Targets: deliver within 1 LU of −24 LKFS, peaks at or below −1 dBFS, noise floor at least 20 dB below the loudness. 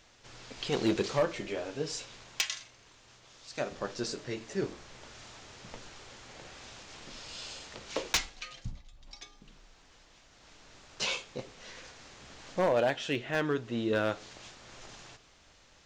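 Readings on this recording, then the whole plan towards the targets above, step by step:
share of clipped samples 0.2%; peaks flattened at −20.5 dBFS; number of dropouts 2; longest dropout 1.8 ms; integrated loudness −33.5 LKFS; sample peak −20.5 dBFS; target loudness −24.0 LKFS
→ clipped peaks rebuilt −20.5 dBFS
repair the gap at 0:08.17/0:13.35, 1.8 ms
level +9.5 dB

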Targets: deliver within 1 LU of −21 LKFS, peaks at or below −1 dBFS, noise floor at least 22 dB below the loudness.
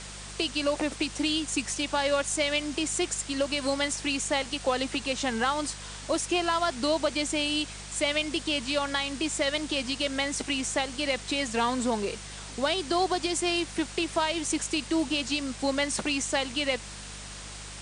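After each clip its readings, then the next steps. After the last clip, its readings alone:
mains hum 50 Hz; hum harmonics up to 200 Hz; level of the hum −43 dBFS; background noise floor −42 dBFS; target noise floor −50 dBFS; integrated loudness −28.0 LKFS; sample peak −13.0 dBFS; target loudness −21.0 LKFS
→ hum removal 50 Hz, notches 4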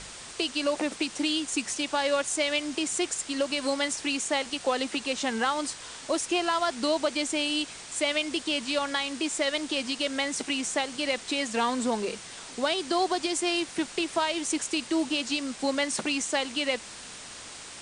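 mains hum none found; background noise floor −43 dBFS; target noise floor −50 dBFS
→ broadband denoise 7 dB, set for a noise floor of −43 dBFS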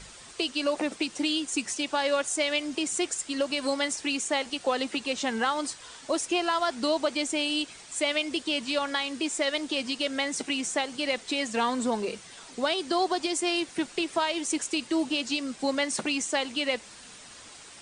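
background noise floor −48 dBFS; target noise floor −51 dBFS
→ broadband denoise 6 dB, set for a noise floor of −48 dBFS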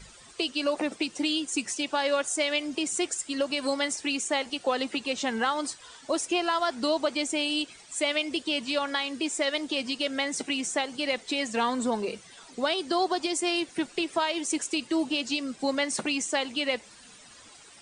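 background noise floor −52 dBFS; integrated loudness −28.5 LKFS; sample peak −13.5 dBFS; target loudness −21.0 LKFS
→ level +7.5 dB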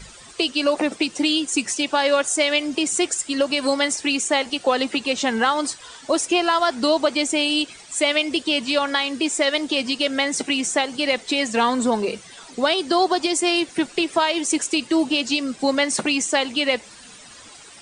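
integrated loudness −21.0 LKFS; sample peak −6.0 dBFS; background noise floor −44 dBFS

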